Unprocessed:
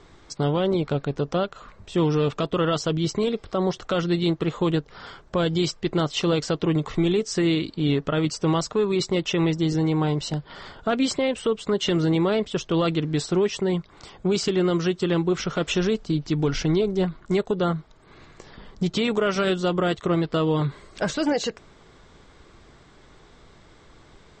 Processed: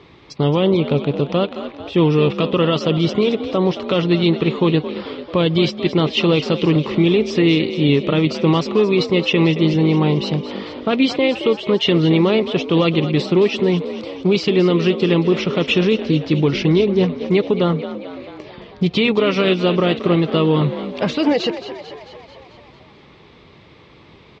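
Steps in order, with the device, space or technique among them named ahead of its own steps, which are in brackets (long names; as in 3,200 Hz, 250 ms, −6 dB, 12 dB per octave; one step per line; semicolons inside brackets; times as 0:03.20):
frequency-shifting delay pedal into a guitar cabinet (echo with shifted repeats 221 ms, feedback 62%, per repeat +48 Hz, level −12 dB; loudspeaker in its box 88–4,400 Hz, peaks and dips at 700 Hz −5 dB, 1,500 Hz −10 dB, 2,500 Hz +6 dB)
level +7 dB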